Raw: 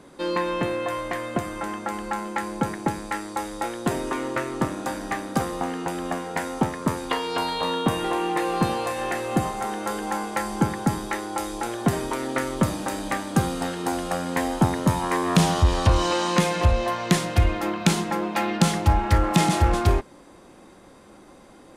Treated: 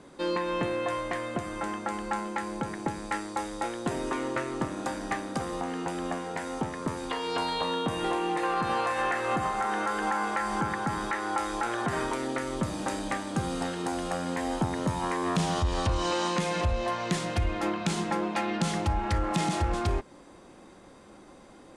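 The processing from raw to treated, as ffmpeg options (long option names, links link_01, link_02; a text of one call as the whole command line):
ffmpeg -i in.wav -filter_complex "[0:a]asettb=1/sr,asplit=3[link_01][link_02][link_03];[link_01]atrim=end=8.434[link_04];[link_02]atrim=start=8.43:end=12.11,asetpts=PTS-STARTPTS,afade=type=in:duration=0.004:curve=qsin,afade=type=out:start_time=3.676:duration=0.004:curve=qsin,equalizer=frequency=1400:width=0.83:gain=10.5[link_05];[link_03]atrim=start=12.106[link_06];[link_04][link_05]acrossfade=duration=0.004:curve1=hsin:curve2=qsin[link_07];[link_07][link_06]acrossfade=duration=0.004:curve1=qsin:curve2=hsin,lowpass=frequency=9900:width=0.5412,lowpass=frequency=9900:width=1.3066,alimiter=limit=-16dB:level=0:latency=1:release=176,volume=-2.5dB" out.wav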